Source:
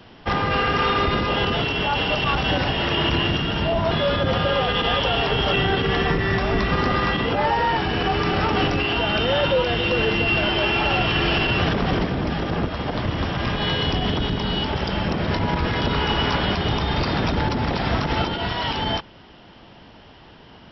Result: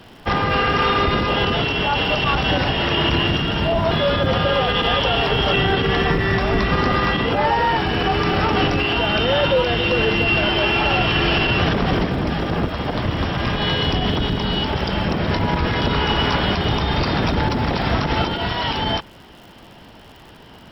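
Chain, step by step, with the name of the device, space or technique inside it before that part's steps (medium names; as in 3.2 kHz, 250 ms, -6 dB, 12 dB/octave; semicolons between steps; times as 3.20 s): vinyl LP (crackle 110 per s -40 dBFS; pink noise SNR 44 dB); trim +2.5 dB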